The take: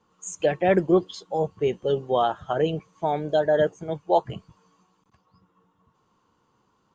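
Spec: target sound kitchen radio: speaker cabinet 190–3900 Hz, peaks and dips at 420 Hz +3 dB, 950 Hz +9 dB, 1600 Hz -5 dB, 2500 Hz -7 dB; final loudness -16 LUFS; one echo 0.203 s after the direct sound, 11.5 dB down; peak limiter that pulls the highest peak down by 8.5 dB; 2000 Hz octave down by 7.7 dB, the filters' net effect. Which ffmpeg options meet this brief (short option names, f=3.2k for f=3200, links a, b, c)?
-af "equalizer=f=2k:t=o:g=-4.5,alimiter=limit=-16.5dB:level=0:latency=1,highpass=190,equalizer=f=420:t=q:w=4:g=3,equalizer=f=950:t=q:w=4:g=9,equalizer=f=1.6k:t=q:w=4:g=-5,equalizer=f=2.5k:t=q:w=4:g=-7,lowpass=f=3.9k:w=0.5412,lowpass=f=3.9k:w=1.3066,aecho=1:1:203:0.266,volume=10dB"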